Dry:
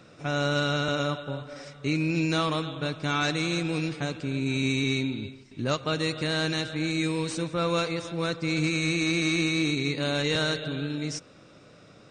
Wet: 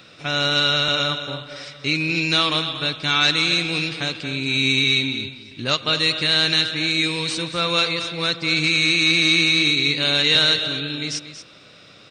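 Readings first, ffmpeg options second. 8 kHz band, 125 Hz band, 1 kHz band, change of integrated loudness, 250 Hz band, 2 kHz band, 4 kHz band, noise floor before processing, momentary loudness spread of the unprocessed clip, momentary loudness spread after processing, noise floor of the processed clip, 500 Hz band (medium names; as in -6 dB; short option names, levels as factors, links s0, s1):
+6.5 dB, +0.5 dB, +5.0 dB, +9.0 dB, +1.0 dB, +10.0 dB, +14.5 dB, -53 dBFS, 7 LU, 11 LU, -47 dBFS, +1.5 dB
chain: -af "highshelf=f=5200:t=q:w=1.5:g=-11,aecho=1:1:233:0.251,crystalizer=i=7.5:c=0"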